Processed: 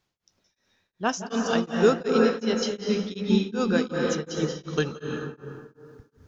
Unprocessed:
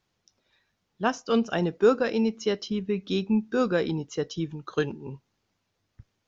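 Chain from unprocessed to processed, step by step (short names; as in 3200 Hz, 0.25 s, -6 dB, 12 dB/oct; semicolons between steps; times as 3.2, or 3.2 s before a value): high shelf 4200 Hz +2 dB, from 1.09 s +12 dB; reverb RT60 2.3 s, pre-delay 0.163 s, DRR -0.5 dB; beating tremolo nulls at 2.7 Hz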